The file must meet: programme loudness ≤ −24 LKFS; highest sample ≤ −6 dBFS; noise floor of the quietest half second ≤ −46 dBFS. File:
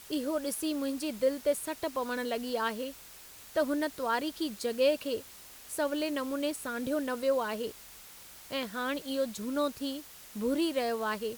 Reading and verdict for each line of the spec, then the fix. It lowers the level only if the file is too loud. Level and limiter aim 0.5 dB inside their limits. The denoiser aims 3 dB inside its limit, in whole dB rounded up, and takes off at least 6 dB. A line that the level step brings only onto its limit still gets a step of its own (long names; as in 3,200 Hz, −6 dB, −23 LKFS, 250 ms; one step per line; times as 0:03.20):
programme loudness −32.5 LKFS: in spec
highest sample −16.0 dBFS: in spec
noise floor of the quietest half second −51 dBFS: in spec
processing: no processing needed